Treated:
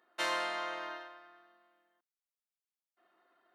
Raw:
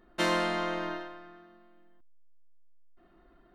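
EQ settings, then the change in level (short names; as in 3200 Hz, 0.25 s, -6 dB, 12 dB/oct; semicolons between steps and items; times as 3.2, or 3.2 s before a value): HPF 670 Hz 12 dB/oct; -3.5 dB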